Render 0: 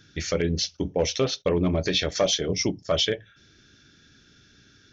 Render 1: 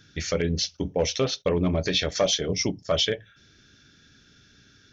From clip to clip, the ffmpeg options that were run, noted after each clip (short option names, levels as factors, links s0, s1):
-af "equalizer=f=340:t=o:w=0.33:g=-3.5"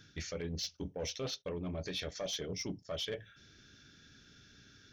-af "areverse,acompressor=threshold=0.0282:ratio=8,areverse,asoftclip=type=tanh:threshold=0.0531,volume=0.668"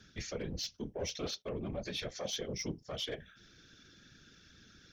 -af "afftfilt=real='hypot(re,im)*cos(2*PI*random(0))':imag='hypot(re,im)*sin(2*PI*random(1))':win_size=512:overlap=0.75,volume=2"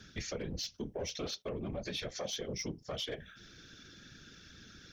-af "acompressor=threshold=0.00794:ratio=3,volume=1.78"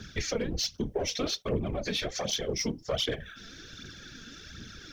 -af "aphaser=in_gain=1:out_gain=1:delay=4.6:decay=0.51:speed=1.3:type=triangular,volume=2.24"